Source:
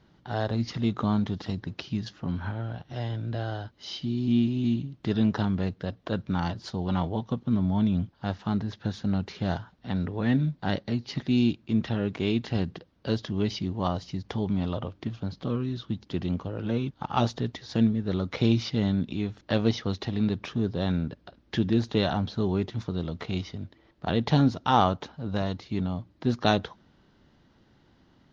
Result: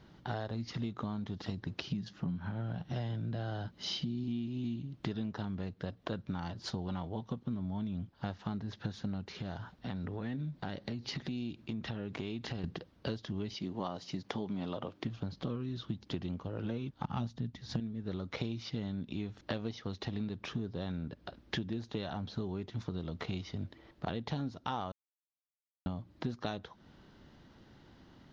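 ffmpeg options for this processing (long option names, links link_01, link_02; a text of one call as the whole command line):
ffmpeg -i in.wav -filter_complex "[0:a]asettb=1/sr,asplit=3[link_01][link_02][link_03];[link_01]atrim=end=1.924[link_04];[link_02]atrim=start=1.92:end=4.24,asetpts=PTS-STARTPTS,afade=type=in:duration=0.004:curve=qsin,afade=type=out:start_time=2.316:duration=0.004:curve=qsin,equalizer=frequency=180:width=2.4:gain=10[link_05];[link_03]atrim=start=4.236[link_06];[link_04][link_05]acrossfade=duration=0.004:curve1=hsin:curve2=qsin[link_07];[link_07][link_06]acrossfade=duration=0.004:curve1=qsin:curve2=hsin,asettb=1/sr,asplit=3[link_08][link_09][link_10];[link_08]atrim=end=9.304[link_11];[link_09]atrim=start=9.3:end=12.64,asetpts=PTS-STARTPTS,afade=type=in:duration=0.004:curve=qsin,afade=type=out:start_time=3.336:duration=0.004:curve=qsin,acompressor=threshold=-37dB:ratio=4:attack=3.2:release=140:knee=1:detection=peak[link_12];[link_10]atrim=start=12.636[link_13];[link_11][link_12]acrossfade=duration=0.004:curve1=hsin:curve2=qsin[link_14];[link_14][link_13]acrossfade=duration=0.004:curve1=qsin:curve2=hsin,asettb=1/sr,asplit=3[link_15][link_16][link_17];[link_15]atrim=end=13.544[link_18];[link_16]atrim=start=13.54:end=15.05,asetpts=PTS-STARTPTS,afade=type=in:duration=0.004:curve=qsin,afade=type=out:start_time=1.506:duration=0.004:curve=qsin,highpass=190[link_19];[link_17]atrim=start=15.046[link_20];[link_18][link_19]acrossfade=duration=0.004:curve1=hsin:curve2=qsin[link_21];[link_21][link_20]acrossfade=duration=0.004:curve1=qsin:curve2=hsin,asettb=1/sr,asplit=3[link_22][link_23][link_24];[link_22]atrim=end=17.034[link_25];[link_23]atrim=start=17.03:end=17.8,asetpts=PTS-STARTPTS,afade=type=in:duration=0.004:curve=qsin,afade=type=out:start_time=0.766:duration=0.004:curve=qsin,lowshelf=frequency=290:width_type=q:width=1.5:gain=9[link_26];[link_24]atrim=start=17.796[link_27];[link_25][link_26]acrossfade=duration=0.004:curve1=hsin:curve2=qsin[link_28];[link_28][link_27]acrossfade=duration=0.004:curve1=qsin:curve2=hsin,asplit=3[link_29][link_30][link_31];[link_29]atrim=end=24.92,asetpts=PTS-STARTPTS,afade=type=out:start_time=24.916:duration=0.004:curve=hsin[link_32];[link_30]atrim=start=24.92:end=25.86,asetpts=PTS-STARTPTS,volume=0[link_33];[link_31]atrim=start=25.86,asetpts=PTS-STARTPTS,afade=type=in:duration=0.004:curve=hsin[link_34];[link_32][link_33][link_34]concat=n=3:v=0:a=1,acompressor=threshold=-36dB:ratio=12,volume=2.5dB" out.wav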